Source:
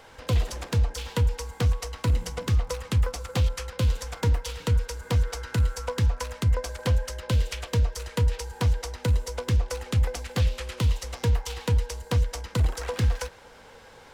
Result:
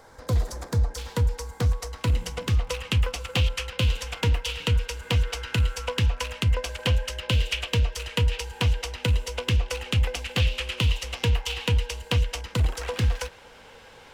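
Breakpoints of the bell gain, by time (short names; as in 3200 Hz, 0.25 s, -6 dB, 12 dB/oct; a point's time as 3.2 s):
bell 2800 Hz 0.68 oct
-13 dB
from 0.9 s -4.5 dB
from 2.01 s +6 dB
from 2.67 s +13.5 dB
from 12.41 s +6 dB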